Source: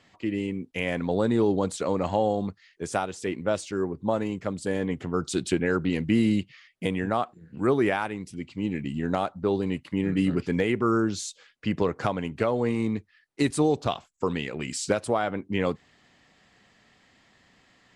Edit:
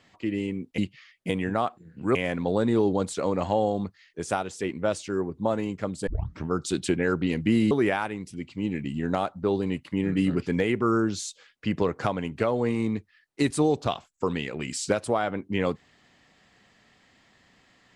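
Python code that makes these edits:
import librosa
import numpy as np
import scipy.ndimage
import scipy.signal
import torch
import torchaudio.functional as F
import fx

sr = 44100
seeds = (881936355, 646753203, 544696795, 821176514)

y = fx.edit(x, sr, fx.tape_start(start_s=4.7, length_s=0.41),
    fx.move(start_s=6.34, length_s=1.37, to_s=0.78), tone=tone)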